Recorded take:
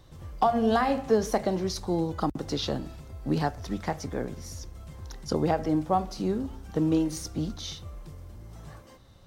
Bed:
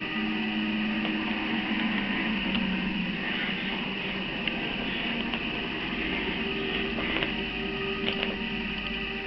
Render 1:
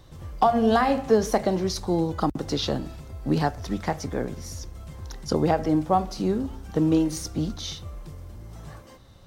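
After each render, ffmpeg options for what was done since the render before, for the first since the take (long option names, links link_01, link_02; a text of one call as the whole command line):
ffmpeg -i in.wav -af "volume=3.5dB" out.wav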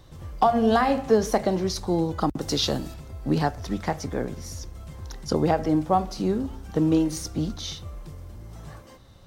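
ffmpeg -i in.wav -filter_complex "[0:a]asettb=1/sr,asplit=3[link_01][link_02][link_03];[link_01]atrim=end=2.414[link_04];[link_02]atrim=start=2.41:end=2.94,asetpts=PTS-STARTPTS,afade=type=in:duration=0.004:curve=qsin,afade=type=out:start_time=0.526:duration=0.004:curve=qsin,highshelf=frequency=4800:gain=11[link_05];[link_03]atrim=start=2.936[link_06];[link_04][link_05]acrossfade=duration=0.004:curve1=hsin:curve2=qsin[link_07];[link_07][link_06]acrossfade=duration=0.004:curve1=qsin:curve2=hsin" out.wav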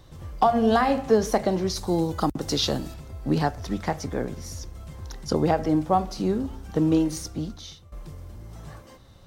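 ffmpeg -i in.wav -filter_complex "[0:a]asettb=1/sr,asplit=3[link_01][link_02][link_03];[link_01]atrim=end=1.774[link_04];[link_02]atrim=start=1.77:end=2.33,asetpts=PTS-STARTPTS,afade=type=in:duration=0.004:curve=qsin,afade=type=out:start_time=0.556:duration=0.004:curve=qsin,highshelf=frequency=5900:gain=10[link_05];[link_03]atrim=start=2.326[link_06];[link_04][link_05]acrossfade=duration=0.004:curve1=hsin:curve2=qsin[link_07];[link_07][link_06]acrossfade=duration=0.004:curve1=qsin:curve2=hsin,asplit=2[link_08][link_09];[link_08]atrim=end=7.92,asetpts=PTS-STARTPTS,afade=type=out:start_time=7.07:duration=0.85:silence=0.158489[link_10];[link_09]atrim=start=7.92,asetpts=PTS-STARTPTS,afade=type=in:duration=0.004:curve=hsin:silence=0.158489[link_11];[link_10][link_11]concat=n=2:v=0:a=1" out.wav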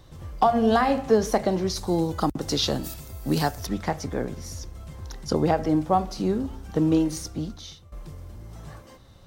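ffmpeg -i in.wav -filter_complex "[0:a]asplit=3[link_01][link_02][link_03];[link_01]afade=type=out:start_time=2.83:duration=0.02[link_04];[link_02]aemphasis=mode=production:type=75fm,afade=type=in:start_time=2.83:duration=0.02,afade=type=out:start_time=3.65:duration=0.02[link_05];[link_03]afade=type=in:start_time=3.65:duration=0.02[link_06];[link_04][link_05][link_06]amix=inputs=3:normalize=0" out.wav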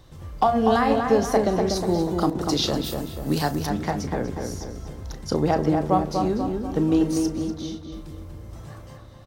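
ffmpeg -i in.wav -filter_complex "[0:a]asplit=2[link_01][link_02];[link_02]adelay=34,volume=-12.5dB[link_03];[link_01][link_03]amix=inputs=2:normalize=0,asplit=2[link_04][link_05];[link_05]adelay=243,lowpass=frequency=2200:poles=1,volume=-4dB,asplit=2[link_06][link_07];[link_07]adelay=243,lowpass=frequency=2200:poles=1,volume=0.51,asplit=2[link_08][link_09];[link_09]adelay=243,lowpass=frequency=2200:poles=1,volume=0.51,asplit=2[link_10][link_11];[link_11]adelay=243,lowpass=frequency=2200:poles=1,volume=0.51,asplit=2[link_12][link_13];[link_13]adelay=243,lowpass=frequency=2200:poles=1,volume=0.51,asplit=2[link_14][link_15];[link_15]adelay=243,lowpass=frequency=2200:poles=1,volume=0.51,asplit=2[link_16][link_17];[link_17]adelay=243,lowpass=frequency=2200:poles=1,volume=0.51[link_18];[link_04][link_06][link_08][link_10][link_12][link_14][link_16][link_18]amix=inputs=8:normalize=0" out.wav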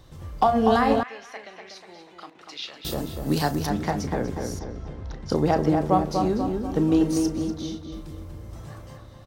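ffmpeg -i in.wav -filter_complex "[0:a]asettb=1/sr,asplit=3[link_01][link_02][link_03];[link_01]atrim=end=1.034[link_04];[link_02]atrim=start=1.03:end=2.85,asetpts=PTS-STARTPTS,afade=type=in:duration=0.004:curve=qsin,afade=type=out:start_time=1.816:duration=0.004:curve=qsin,bandpass=frequency=2400:width_type=q:width=2.9[link_05];[link_03]atrim=start=2.846[link_06];[link_04][link_05]acrossfade=duration=0.004:curve1=hsin:curve2=qsin[link_07];[link_07][link_06]acrossfade=duration=0.004:curve1=qsin:curve2=hsin,asettb=1/sr,asplit=3[link_08][link_09][link_10];[link_08]atrim=end=4.594[link_11];[link_09]atrim=start=4.59:end=5.3,asetpts=PTS-STARTPTS,afade=type=in:duration=0.004:curve=qsin,afade=type=out:start_time=0.706:duration=0.004:curve=qsin,lowpass=3400[link_12];[link_10]atrim=start=5.296[link_13];[link_11][link_12]acrossfade=duration=0.004:curve1=hsin:curve2=qsin[link_14];[link_14][link_13]acrossfade=duration=0.004:curve1=qsin:curve2=hsin" out.wav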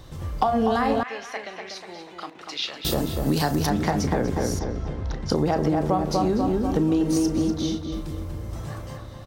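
ffmpeg -i in.wav -filter_complex "[0:a]asplit=2[link_01][link_02];[link_02]alimiter=limit=-18dB:level=0:latency=1,volume=0.5dB[link_03];[link_01][link_03]amix=inputs=2:normalize=0,acompressor=threshold=-18dB:ratio=6" out.wav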